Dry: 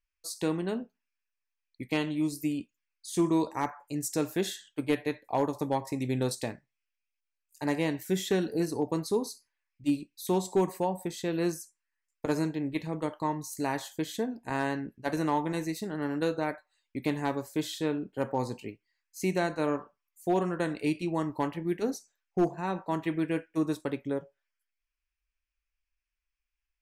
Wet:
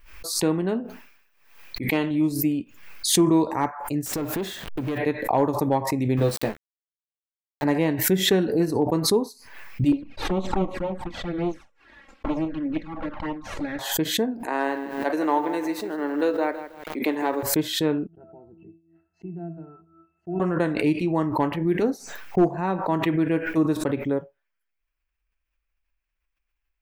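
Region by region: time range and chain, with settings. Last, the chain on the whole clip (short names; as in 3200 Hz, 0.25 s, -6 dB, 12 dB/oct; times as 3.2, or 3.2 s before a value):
0.8–2.11 low shelf 160 Hz -6.5 dB + sustainer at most 66 dB/s
4.06–4.98 level-crossing sampler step -49 dBFS + compressor 3:1, threshold -41 dBFS + sample leveller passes 3
6.17–7.64 sample gate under -37.5 dBFS + doubler 14 ms -4 dB
9.92–13.79 minimum comb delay 3.6 ms + LPF 3900 Hz + envelope flanger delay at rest 4 ms, full sweep at -28 dBFS
14.43–17.43 HPF 290 Hz 24 dB/oct + lo-fi delay 0.161 s, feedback 35%, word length 8-bit, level -11 dB
18.07–20.4 tape spacing loss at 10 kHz 28 dB + octave resonator E, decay 0.28 s + mismatched tape noise reduction decoder only
whole clip: bell 7800 Hz -12.5 dB 2.3 oct; backwards sustainer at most 73 dB/s; gain +7 dB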